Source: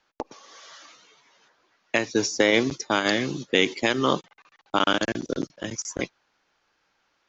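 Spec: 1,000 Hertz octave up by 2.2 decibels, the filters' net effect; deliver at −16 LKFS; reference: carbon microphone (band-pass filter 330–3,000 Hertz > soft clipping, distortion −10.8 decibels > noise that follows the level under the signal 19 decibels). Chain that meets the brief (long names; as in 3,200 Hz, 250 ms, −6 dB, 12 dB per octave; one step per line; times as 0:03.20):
band-pass filter 330–3,000 Hz
parametric band 1,000 Hz +3 dB
soft clipping −15.5 dBFS
noise that follows the level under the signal 19 dB
level +13 dB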